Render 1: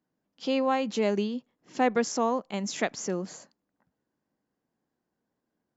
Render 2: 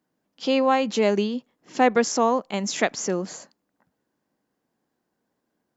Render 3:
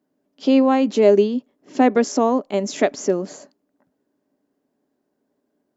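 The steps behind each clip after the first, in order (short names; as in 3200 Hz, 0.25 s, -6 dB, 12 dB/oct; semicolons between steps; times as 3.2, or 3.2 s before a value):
low shelf 170 Hz -6 dB; gain +6.5 dB
small resonant body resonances 280/400/580 Hz, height 13 dB, ringing for 50 ms; gain -2.5 dB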